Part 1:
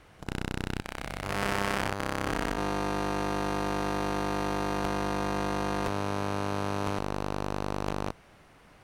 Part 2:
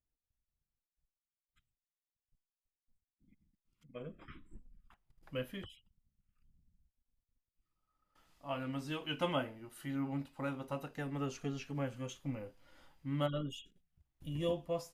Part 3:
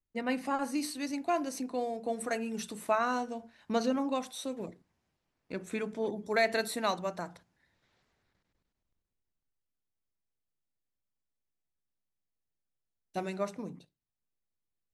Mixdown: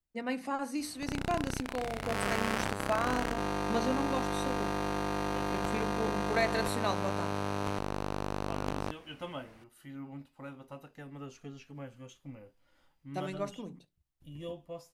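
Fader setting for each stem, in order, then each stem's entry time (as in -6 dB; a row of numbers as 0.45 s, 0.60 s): -3.0 dB, -6.5 dB, -2.5 dB; 0.80 s, 0.00 s, 0.00 s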